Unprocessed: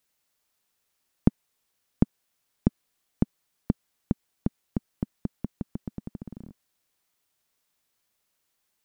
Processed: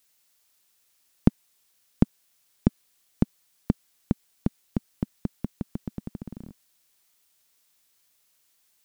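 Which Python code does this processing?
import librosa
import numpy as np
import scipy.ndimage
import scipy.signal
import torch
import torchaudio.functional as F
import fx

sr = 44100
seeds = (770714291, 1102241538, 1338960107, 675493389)

y = fx.high_shelf(x, sr, hz=2200.0, db=8.5)
y = y * 10.0 ** (1.5 / 20.0)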